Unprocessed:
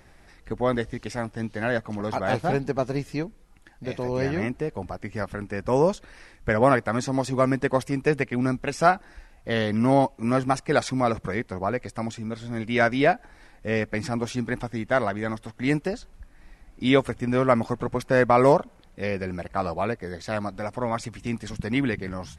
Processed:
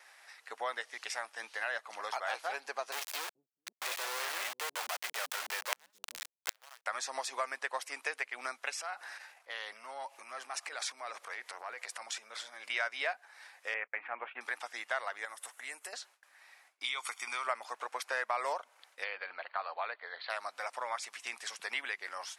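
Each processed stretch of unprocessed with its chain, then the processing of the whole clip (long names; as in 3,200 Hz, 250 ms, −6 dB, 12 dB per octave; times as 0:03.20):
0:02.92–0:06.86: log-companded quantiser 2 bits + gate with flip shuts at −19 dBFS, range −40 dB + multiband delay without the direct sound highs, lows 430 ms, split 190 Hz
0:08.75–0:12.70: transient designer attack −11 dB, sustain +6 dB + downward compressor 4 to 1, threshold −33 dBFS + one half of a high-frequency compander decoder only
0:13.74–0:14.41: noise gate −35 dBFS, range −28 dB + Butterworth low-pass 2,700 Hz 48 dB per octave
0:15.25–0:15.93: downward compressor 2.5 to 1, threshold −38 dBFS + high shelf with overshoot 6,500 Hz +9 dB, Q 1.5
0:16.84–0:17.47: spectral tilt +2 dB per octave + comb filter 0.9 ms, depth 62% + downward compressor, threshold −24 dBFS
0:19.04–0:20.30: Chebyshev low-pass with heavy ripple 4,500 Hz, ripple 3 dB + notch filter 370 Hz, Q 6.8
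whole clip: Bessel high-pass filter 1,100 Hz, order 4; noise gate with hold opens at −54 dBFS; downward compressor 2.5 to 1, threshold −38 dBFS; level +2.5 dB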